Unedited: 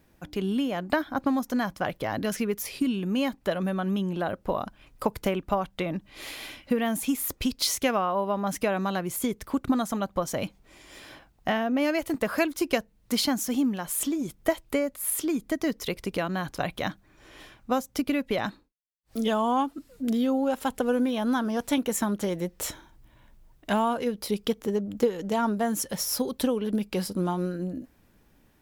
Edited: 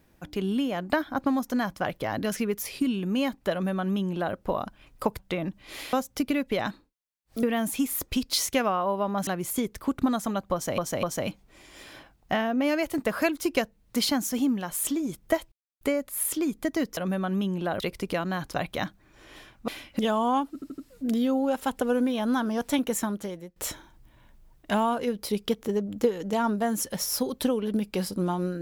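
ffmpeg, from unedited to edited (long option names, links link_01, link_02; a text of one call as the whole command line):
ffmpeg -i in.wav -filter_complex "[0:a]asplit=16[link_01][link_02][link_03][link_04][link_05][link_06][link_07][link_08][link_09][link_10][link_11][link_12][link_13][link_14][link_15][link_16];[link_01]atrim=end=5.192[link_17];[link_02]atrim=start=5.668:end=6.412[link_18];[link_03]atrim=start=17.718:end=19.222[link_19];[link_04]atrim=start=6.718:end=8.562[link_20];[link_05]atrim=start=8.928:end=10.442[link_21];[link_06]atrim=start=10.188:end=10.442[link_22];[link_07]atrim=start=10.188:end=14.68,asetpts=PTS-STARTPTS,afade=type=out:start_time=4.488:duration=0.004:curve=hsin,apad=pad_dur=0.29[link_23];[link_08]atrim=start=14.68:end=15.842,asetpts=PTS-STARTPTS,afade=type=in:duration=0.004:curve=hsin[link_24];[link_09]atrim=start=3.518:end=4.352[link_25];[link_10]atrim=start=15.838:end=17.722[link_26];[link_11]atrim=start=6.408:end=6.722[link_27];[link_12]atrim=start=19.218:end=19.852[link_28];[link_13]atrim=start=19.768:end=19.852[link_29];[link_14]atrim=start=19.768:end=19.852[link_30];[link_15]atrim=start=19.768:end=22.55,asetpts=PTS-STARTPTS,afade=type=out:start_time=2.122:duration=0.66:silence=0.0944061[link_31];[link_16]atrim=start=22.55,asetpts=PTS-STARTPTS,afade=type=in:duration=0.004:curve=hsin:silence=0.0944061[link_32];[link_17][link_18]acrossfade=duration=0.004:curve1=hsin:curve2=hsin[link_33];[link_33][link_19]acrossfade=duration=0.004:curve1=hsin:curve2=hsin[link_34];[link_34][link_20]acrossfade=duration=0.004:curve1=hsin:curve2=hsin[link_35];[link_35][link_21]acrossfade=duration=0.004:curve1=hsin:curve2=hsin[link_36];[link_36][link_22]acrossfade=duration=0.004:curve1=hsin:curve2=hsin[link_37];[link_23][link_24]concat=n=2:v=0:a=1[link_38];[link_37][link_38]acrossfade=duration=0.004:curve1=hsin:curve2=hsin[link_39];[link_39][link_25]acrossfade=duration=0.004:curve1=hsin:curve2=hsin[link_40];[link_40][link_26]acrossfade=duration=0.004:curve1=hsin:curve2=hsin[link_41];[link_41][link_27]acrossfade=duration=0.004:curve1=hsin:curve2=hsin[link_42];[link_42][link_28]acrossfade=duration=0.004:curve1=hsin:curve2=hsin[link_43];[link_43][link_29]acrossfade=duration=0.004:curve1=hsin:curve2=hsin[link_44];[link_44][link_30]acrossfade=duration=0.004:curve1=hsin:curve2=hsin[link_45];[link_31][link_32]concat=n=2:v=0:a=1[link_46];[link_45][link_46]acrossfade=duration=0.004:curve1=hsin:curve2=hsin" out.wav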